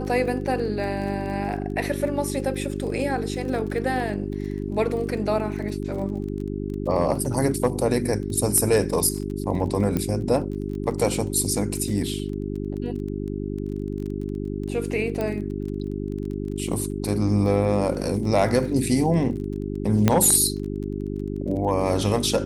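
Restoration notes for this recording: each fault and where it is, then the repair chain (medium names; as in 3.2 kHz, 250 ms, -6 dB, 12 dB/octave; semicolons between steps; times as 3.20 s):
crackle 22 per s -32 dBFS
hum 50 Hz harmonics 8 -29 dBFS
9.97 s: pop -12 dBFS
15.21 s: pop -15 dBFS
20.08 s: pop -4 dBFS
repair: de-click; de-hum 50 Hz, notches 8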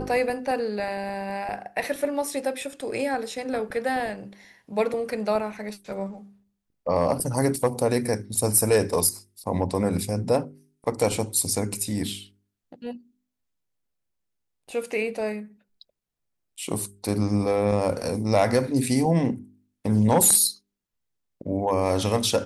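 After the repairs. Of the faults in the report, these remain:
nothing left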